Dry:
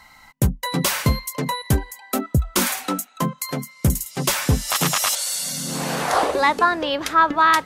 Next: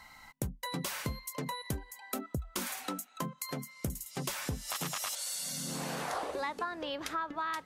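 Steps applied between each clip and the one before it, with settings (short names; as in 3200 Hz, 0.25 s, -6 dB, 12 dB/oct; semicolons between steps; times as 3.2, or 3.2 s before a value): compressor 4:1, threshold -30 dBFS, peak gain reduction 16 dB; gain -5.5 dB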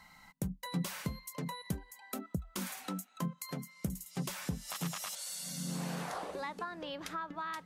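bell 180 Hz +13.5 dB 0.33 oct; gain -4.5 dB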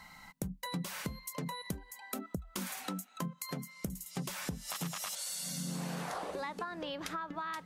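compressor 3:1, threshold -41 dBFS, peak gain reduction 9 dB; gain +4.5 dB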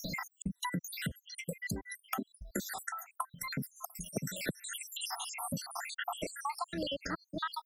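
random spectral dropouts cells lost 82%; three-band squash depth 100%; gain +6.5 dB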